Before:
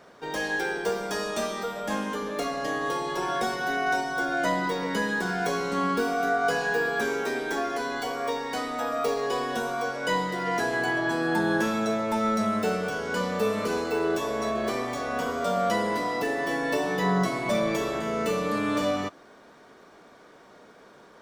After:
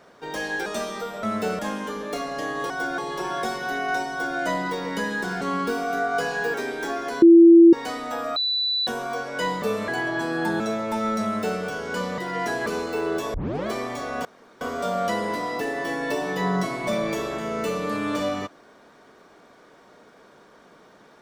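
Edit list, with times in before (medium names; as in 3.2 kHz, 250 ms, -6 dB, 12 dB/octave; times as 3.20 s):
0.66–1.28 s: delete
4.08–4.36 s: copy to 2.96 s
5.39–5.71 s: delete
6.84–7.22 s: delete
7.90–8.41 s: bleep 336 Hz -7 dBFS
9.04–9.55 s: bleep 3.97 kHz -21 dBFS
10.30–10.78 s: swap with 13.38–13.64 s
11.50–11.80 s: delete
12.44–12.80 s: copy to 1.85 s
14.32 s: tape start 0.33 s
15.23 s: insert room tone 0.36 s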